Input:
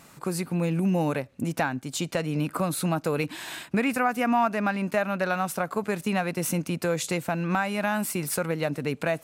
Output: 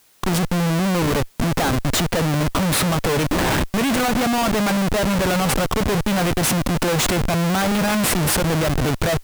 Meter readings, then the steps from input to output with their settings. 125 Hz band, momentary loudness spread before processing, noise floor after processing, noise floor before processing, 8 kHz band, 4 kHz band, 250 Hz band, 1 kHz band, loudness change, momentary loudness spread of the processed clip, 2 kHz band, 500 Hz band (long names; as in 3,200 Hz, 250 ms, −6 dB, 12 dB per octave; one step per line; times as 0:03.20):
+9.5 dB, 5 LU, −40 dBFS, −52 dBFS, +10.5 dB, +13.5 dB, +7.5 dB, +5.5 dB, +7.5 dB, 2 LU, +6.5 dB, +6.0 dB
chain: comparator with hysteresis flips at −33.5 dBFS
background noise white −64 dBFS
level +8.5 dB